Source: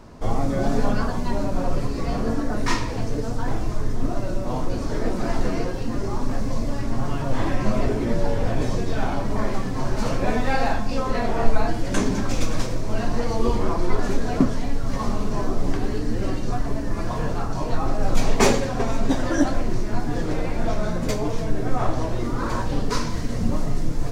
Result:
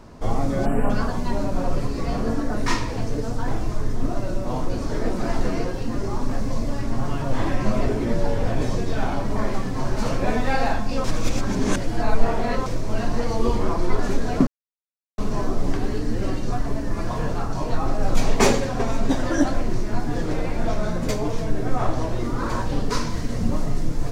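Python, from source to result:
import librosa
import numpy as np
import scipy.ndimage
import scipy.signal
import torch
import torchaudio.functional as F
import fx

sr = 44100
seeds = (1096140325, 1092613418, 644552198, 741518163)

y = fx.spec_box(x, sr, start_s=0.66, length_s=0.24, low_hz=3100.0, high_hz=7400.0, gain_db=-25)
y = fx.edit(y, sr, fx.reverse_span(start_s=11.04, length_s=1.62),
    fx.silence(start_s=14.47, length_s=0.71), tone=tone)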